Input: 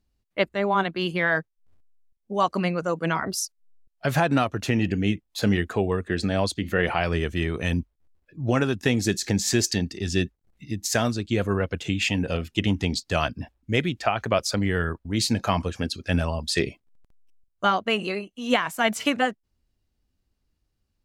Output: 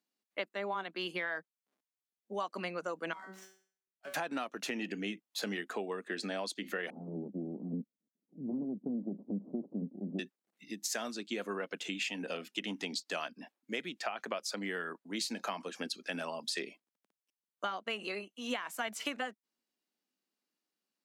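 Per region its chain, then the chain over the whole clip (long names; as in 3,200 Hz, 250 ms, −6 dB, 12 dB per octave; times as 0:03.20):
0:03.13–0:04.14: running median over 9 samples + tuned comb filter 190 Hz, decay 0.46 s, mix 90% + hum removal 76.51 Hz, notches 39
0:06.90–0:10.19: lower of the sound and its delayed copy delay 0.87 ms + Butterworth low-pass 580 Hz + low shelf with overshoot 320 Hz +9 dB, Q 1.5
whole clip: Butterworth high-pass 200 Hz 36 dB per octave; low-shelf EQ 490 Hz −7 dB; downward compressor, threshold −29 dBFS; level −4.5 dB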